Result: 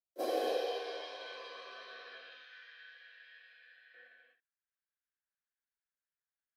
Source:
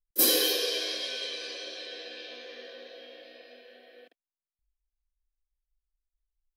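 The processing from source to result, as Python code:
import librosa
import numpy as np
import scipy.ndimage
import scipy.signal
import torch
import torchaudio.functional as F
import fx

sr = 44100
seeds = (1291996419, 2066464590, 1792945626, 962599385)

y = fx.filter_sweep_bandpass(x, sr, from_hz=660.0, to_hz=1600.0, start_s=0.16, end_s=2.81, q=4.9)
y = fx.tone_stack(y, sr, knobs='10-0-10', at=(2.17, 3.94))
y = fx.rev_gated(y, sr, seeds[0], gate_ms=290, shape='flat', drr_db=-0.5)
y = F.gain(torch.from_numpy(y), 6.0).numpy()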